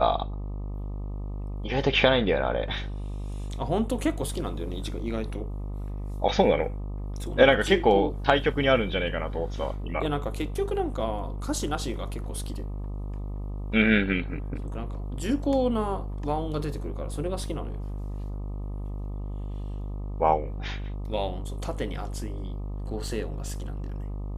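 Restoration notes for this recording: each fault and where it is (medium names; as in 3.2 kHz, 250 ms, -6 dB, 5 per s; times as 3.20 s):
buzz 50 Hz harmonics 25 -33 dBFS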